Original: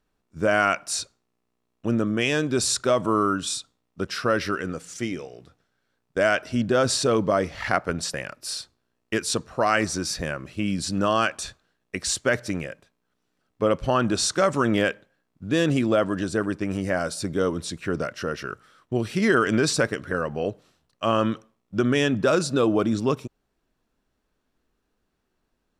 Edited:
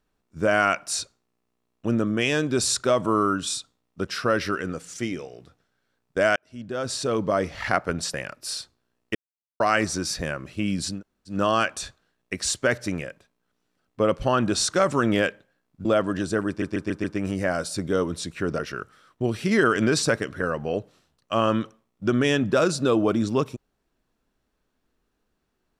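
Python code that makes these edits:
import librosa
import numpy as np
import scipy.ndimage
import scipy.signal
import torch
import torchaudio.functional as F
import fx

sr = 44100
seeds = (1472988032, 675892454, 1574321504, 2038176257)

y = fx.edit(x, sr, fx.fade_in_span(start_s=6.36, length_s=1.15),
    fx.silence(start_s=9.15, length_s=0.45),
    fx.insert_room_tone(at_s=10.95, length_s=0.38, crossfade_s=0.16),
    fx.cut(start_s=15.47, length_s=0.4),
    fx.stutter(start_s=16.5, slice_s=0.14, count=5),
    fx.cut(start_s=18.05, length_s=0.25), tone=tone)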